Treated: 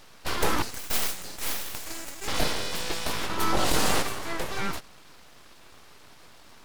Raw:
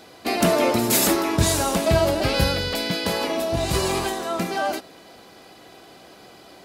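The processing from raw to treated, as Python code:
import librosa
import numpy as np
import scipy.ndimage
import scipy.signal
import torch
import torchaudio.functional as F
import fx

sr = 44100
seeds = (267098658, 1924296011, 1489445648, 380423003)

y = fx.steep_highpass(x, sr, hz=1700.0, slope=96, at=(0.62, 2.28))
y = np.abs(y)
y = fx.env_flatten(y, sr, amount_pct=70, at=(3.39, 4.01), fade=0.02)
y = y * 10.0 ** (-3.0 / 20.0)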